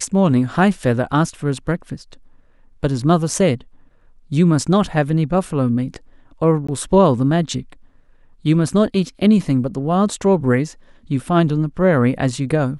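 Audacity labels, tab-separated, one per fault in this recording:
6.670000	6.680000	dropout 15 ms

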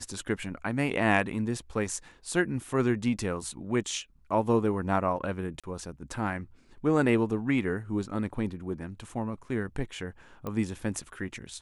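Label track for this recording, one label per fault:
5.600000	5.640000	dropout 36 ms
10.470000	10.470000	pop -22 dBFS

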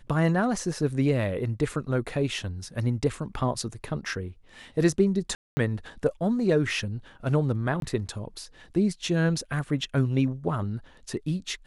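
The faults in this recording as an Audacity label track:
5.350000	5.570000	dropout 220 ms
7.800000	7.820000	dropout 22 ms

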